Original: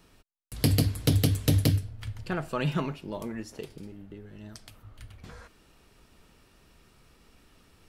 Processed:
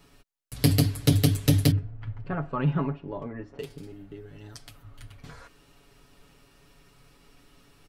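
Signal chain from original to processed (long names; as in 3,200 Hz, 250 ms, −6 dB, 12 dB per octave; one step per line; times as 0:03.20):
0:01.71–0:03.59: low-pass filter 1,500 Hz 12 dB per octave
comb filter 7.1 ms, depth 75%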